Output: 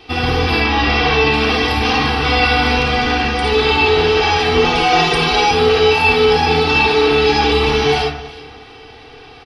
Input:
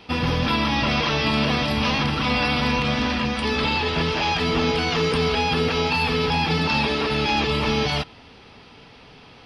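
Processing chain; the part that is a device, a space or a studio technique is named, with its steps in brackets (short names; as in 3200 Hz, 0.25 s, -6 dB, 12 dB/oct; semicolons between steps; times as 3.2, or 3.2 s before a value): 0.59–1.34 LPF 5200 Hz 12 dB/oct; microphone above a desk (comb 2.6 ms, depth 81%; reverb RT60 0.40 s, pre-delay 51 ms, DRR -1.5 dB); 4.64–5.51 comb 5.7 ms, depth 97%; echo with dull and thin repeats by turns 0.182 s, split 1900 Hz, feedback 55%, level -13 dB; gain +2 dB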